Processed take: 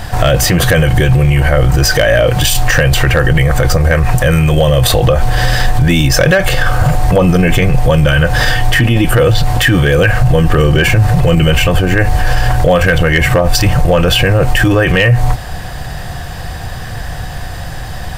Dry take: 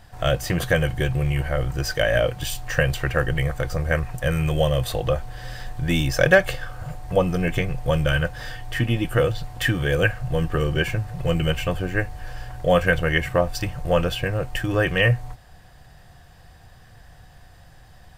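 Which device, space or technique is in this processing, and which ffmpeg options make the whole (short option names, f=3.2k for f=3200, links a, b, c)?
loud club master: -af "acompressor=threshold=-22dB:ratio=2.5,asoftclip=type=hard:threshold=-15dB,alimiter=level_in=26.5dB:limit=-1dB:release=50:level=0:latency=1,volume=-1dB"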